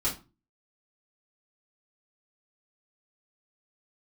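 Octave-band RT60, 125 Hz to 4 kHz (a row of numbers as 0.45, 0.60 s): 0.50, 0.45, 0.30, 0.30, 0.25, 0.25 s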